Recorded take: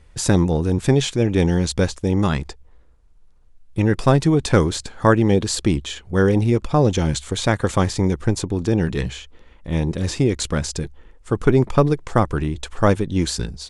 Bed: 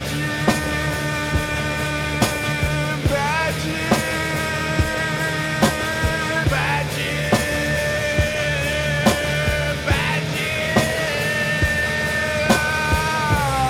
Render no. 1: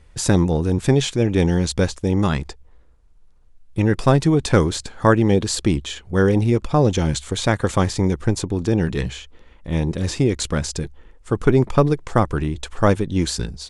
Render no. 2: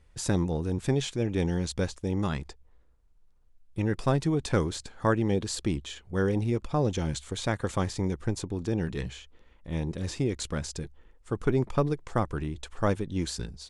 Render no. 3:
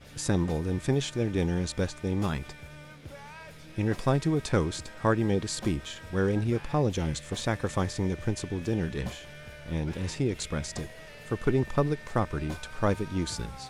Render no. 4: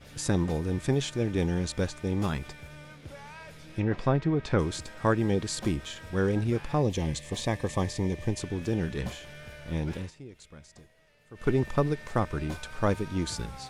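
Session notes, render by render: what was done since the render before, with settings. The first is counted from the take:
no audible change
trim -10 dB
add bed -25.5 dB
2.80–4.59 s: low-pass that closes with the level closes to 2.6 kHz, closed at -23 dBFS; 6.83–8.41 s: Butterworth band-stop 1.4 kHz, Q 3.4; 9.96–11.49 s: dip -17.5 dB, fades 0.15 s

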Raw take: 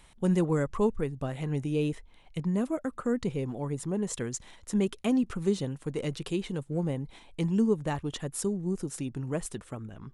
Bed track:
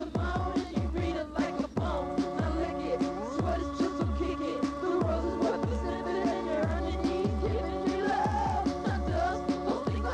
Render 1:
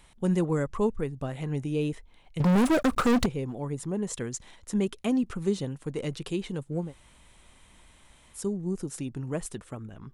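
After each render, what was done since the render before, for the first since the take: 2.40–3.26 s: waveshaping leveller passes 5; 6.86–8.39 s: room tone, crossfade 0.16 s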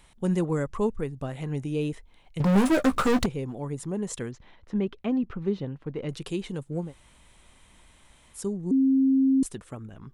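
2.45–3.19 s: doubling 15 ms -6.5 dB; 4.31–6.09 s: distance through air 290 m; 8.71–9.43 s: bleep 267 Hz -17.5 dBFS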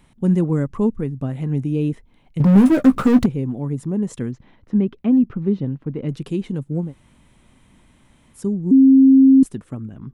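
graphic EQ 125/250/4000/8000 Hz +8/+10/-3/-4 dB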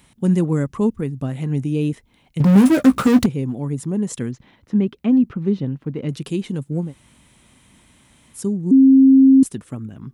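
high-pass 46 Hz; treble shelf 2.5 kHz +9.5 dB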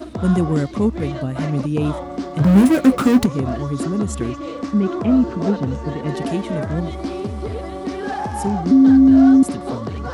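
add bed track +3.5 dB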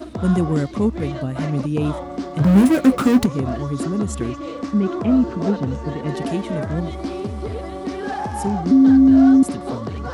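trim -1 dB

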